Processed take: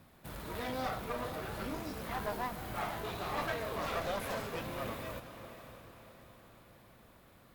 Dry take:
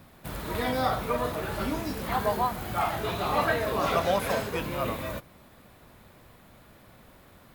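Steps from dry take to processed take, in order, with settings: one-sided clip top -34 dBFS; diffused feedback echo 0.556 s, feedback 48%, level -11 dB; gain -7.5 dB

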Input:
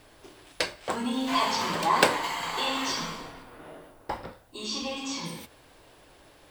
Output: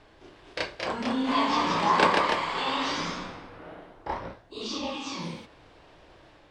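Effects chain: reverse echo 31 ms -4 dB; echoes that change speed 0.257 s, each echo +1 st, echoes 2; air absorption 130 m; gain -1.5 dB

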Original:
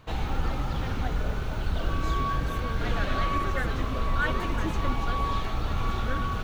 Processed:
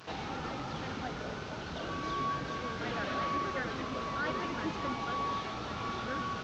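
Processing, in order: delta modulation 32 kbps, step -39.5 dBFS; HPF 170 Hz 12 dB/oct; gain -3.5 dB

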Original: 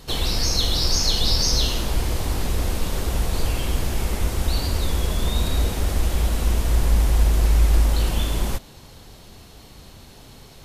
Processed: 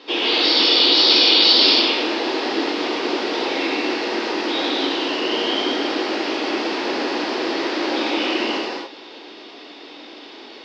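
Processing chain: Chebyshev band-pass 280–5900 Hz, order 4; formant shift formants -3 st; non-linear reverb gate 0.32 s flat, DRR -5.5 dB; gain +4 dB

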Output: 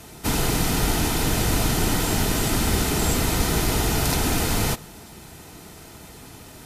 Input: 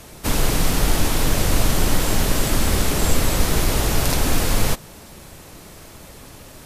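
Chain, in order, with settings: notch comb 560 Hz; on a send: reverb RT60 0.40 s, pre-delay 0.109 s, DRR 23.5 dB

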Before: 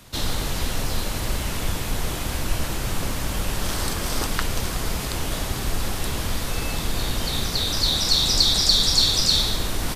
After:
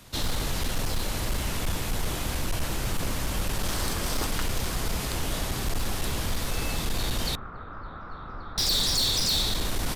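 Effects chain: 7.35–8.58 ladder low-pass 1400 Hz, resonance 75%; hard clip -19 dBFS, distortion -12 dB; gain -2.5 dB

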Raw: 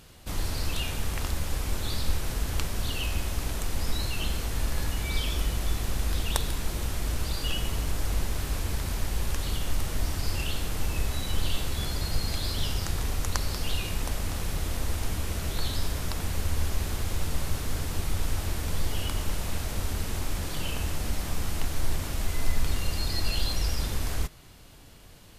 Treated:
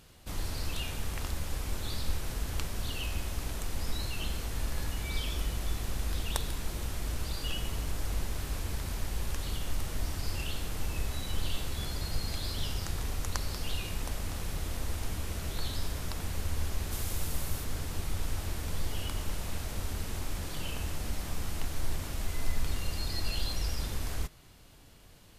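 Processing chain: 16.91–17.63 high shelf 5500 Hz -> 11000 Hz +9.5 dB; gain -5 dB

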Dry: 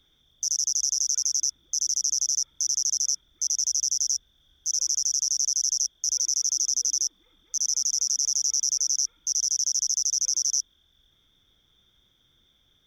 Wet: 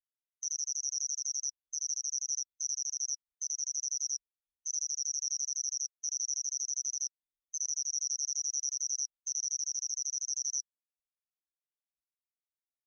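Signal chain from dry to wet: level quantiser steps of 16 dB; spectral expander 2.5:1; gain -1.5 dB

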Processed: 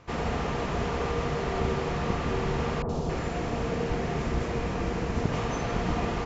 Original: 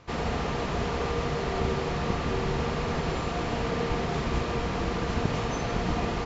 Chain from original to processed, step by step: bell 4200 Hz -4 dB 0.77 oct; 2.82–5.32 three bands offset in time lows, highs, mids 70/270 ms, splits 1100/3400 Hz

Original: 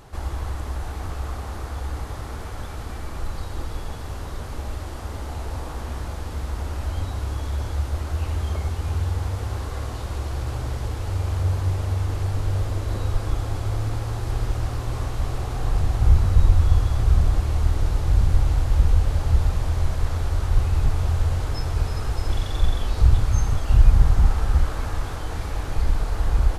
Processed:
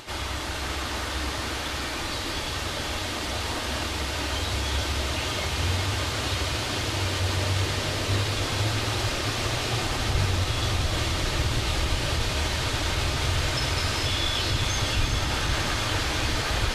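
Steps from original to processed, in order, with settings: weighting filter D; limiter -20.5 dBFS, peak gain reduction 7 dB; diffused feedback echo 0.659 s, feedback 78%, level -7 dB; vibrato 8 Hz 20 cents; reverb RT60 0.40 s, pre-delay 3 ms, DRR 8.5 dB; plain phase-vocoder stretch 0.63×; gain +6 dB

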